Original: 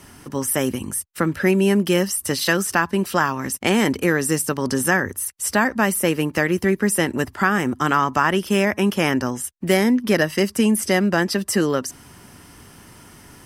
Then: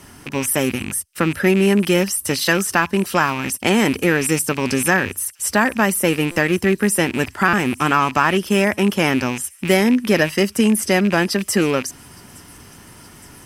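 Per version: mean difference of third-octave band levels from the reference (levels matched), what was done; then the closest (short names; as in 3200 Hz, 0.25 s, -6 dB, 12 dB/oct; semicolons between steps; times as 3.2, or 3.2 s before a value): 1.5 dB: rattling part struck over -35 dBFS, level -19 dBFS; on a send: thin delay 0.866 s, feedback 78%, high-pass 5500 Hz, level -21.5 dB; on the sum: stuck buffer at 6.31/7.48, samples 256, times 8; gain +2 dB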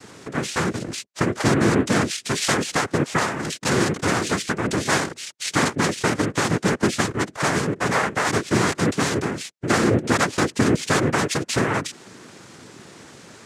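8.5 dB: in parallel at +0.5 dB: compressor, threshold -26 dBFS, peak gain reduction 13.5 dB; on the sum: noise vocoder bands 3; short-mantissa float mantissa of 8-bit; gain -4 dB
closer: first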